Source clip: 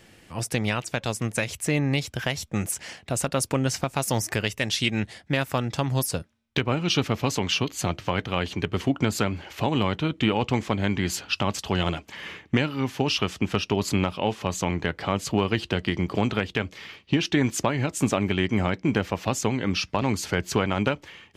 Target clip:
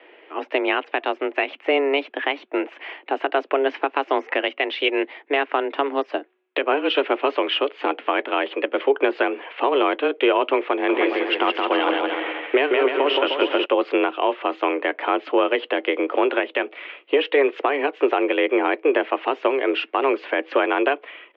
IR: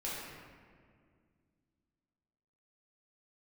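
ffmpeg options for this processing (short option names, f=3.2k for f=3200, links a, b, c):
-filter_complex "[0:a]asplit=3[a][b][c];[a]afade=t=out:st=10.88:d=0.02[d];[b]aecho=1:1:170|306|414.8|501.8|571.5:0.631|0.398|0.251|0.158|0.1,afade=t=in:st=10.88:d=0.02,afade=t=out:st=13.64:d=0.02[e];[c]afade=t=in:st=13.64:d=0.02[f];[d][e][f]amix=inputs=3:normalize=0,highpass=f=190:t=q:w=0.5412,highpass=f=190:t=q:w=1.307,lowpass=f=2.8k:t=q:w=0.5176,lowpass=f=2.8k:t=q:w=0.7071,lowpass=f=2.8k:t=q:w=1.932,afreqshift=140,alimiter=level_in=13.5dB:limit=-1dB:release=50:level=0:latency=1,volume=-7dB"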